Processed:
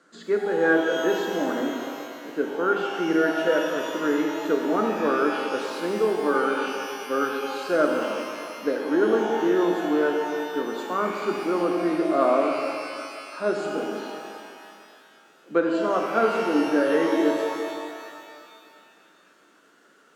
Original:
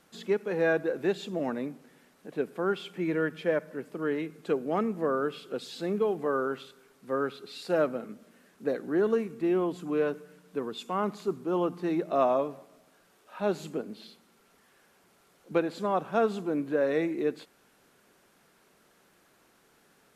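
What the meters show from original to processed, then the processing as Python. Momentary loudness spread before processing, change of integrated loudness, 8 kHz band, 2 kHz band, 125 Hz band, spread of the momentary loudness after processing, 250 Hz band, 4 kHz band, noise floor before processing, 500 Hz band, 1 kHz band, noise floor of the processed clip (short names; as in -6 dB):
11 LU, +6.0 dB, n/a, +9.5 dB, -2.0 dB, 11 LU, +6.5 dB, +9.0 dB, -64 dBFS, +5.5 dB, +8.0 dB, -57 dBFS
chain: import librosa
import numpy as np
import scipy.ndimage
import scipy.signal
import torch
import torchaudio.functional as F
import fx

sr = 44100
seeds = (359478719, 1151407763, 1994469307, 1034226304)

y = fx.cabinet(x, sr, low_hz=290.0, low_slope=12, high_hz=7500.0, hz=(290.0, 830.0, 1400.0, 2500.0, 3500.0, 5500.0), db=(6, -9, 7, -9, -7, -7))
y = fx.rev_shimmer(y, sr, seeds[0], rt60_s=2.3, semitones=12, shimmer_db=-8, drr_db=1.0)
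y = y * librosa.db_to_amplitude(3.5)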